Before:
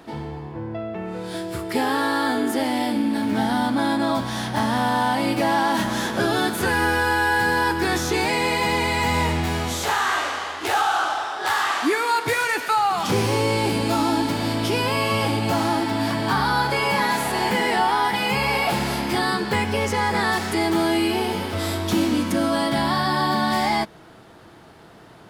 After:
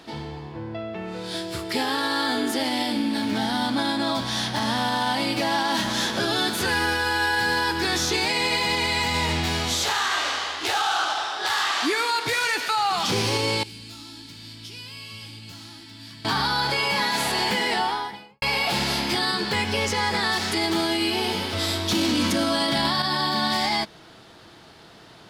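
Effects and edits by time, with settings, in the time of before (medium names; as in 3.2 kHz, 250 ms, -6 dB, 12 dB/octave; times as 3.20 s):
13.63–16.25 s: amplifier tone stack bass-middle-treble 6-0-2
17.62–18.42 s: studio fade out
21.89–23.02 s: gain +10.5 dB
whole clip: peaking EQ 4.3 kHz +10.5 dB 1.7 oct; peak limiter -11.5 dBFS; trim -3 dB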